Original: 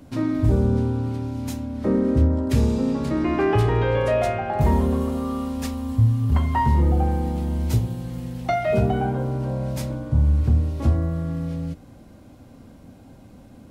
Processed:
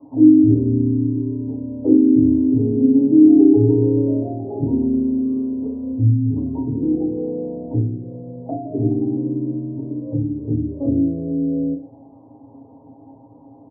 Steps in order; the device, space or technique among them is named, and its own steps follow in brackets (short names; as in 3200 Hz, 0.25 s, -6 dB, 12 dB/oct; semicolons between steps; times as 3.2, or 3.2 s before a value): steep low-pass 920 Hz 48 dB/oct; comb 7.4 ms, depth 99%; envelope filter bass rig (envelope low-pass 320–1000 Hz down, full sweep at -17.5 dBFS; speaker cabinet 85–2100 Hz, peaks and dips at 150 Hz -9 dB, 410 Hz +4 dB, 1200 Hz +7 dB); FDN reverb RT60 0.32 s, low-frequency decay 1×, high-frequency decay 0.95×, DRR -5 dB; gain -10 dB